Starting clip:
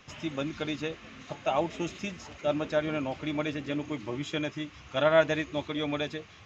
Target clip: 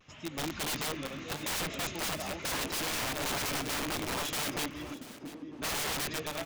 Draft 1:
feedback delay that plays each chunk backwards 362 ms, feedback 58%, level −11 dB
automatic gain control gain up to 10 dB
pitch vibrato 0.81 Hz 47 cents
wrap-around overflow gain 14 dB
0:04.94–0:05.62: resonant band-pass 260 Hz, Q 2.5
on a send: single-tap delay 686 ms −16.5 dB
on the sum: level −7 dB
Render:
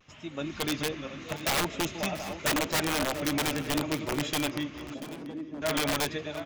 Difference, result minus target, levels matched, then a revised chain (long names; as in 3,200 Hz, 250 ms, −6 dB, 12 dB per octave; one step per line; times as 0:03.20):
wrap-around overflow: distortion −12 dB
feedback delay that plays each chunk backwards 362 ms, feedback 58%, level −11 dB
automatic gain control gain up to 10 dB
pitch vibrato 0.81 Hz 47 cents
wrap-around overflow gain 21.5 dB
0:04.94–0:05.62: resonant band-pass 260 Hz, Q 2.5
on a send: single-tap delay 686 ms −16.5 dB
on the sum: level −7 dB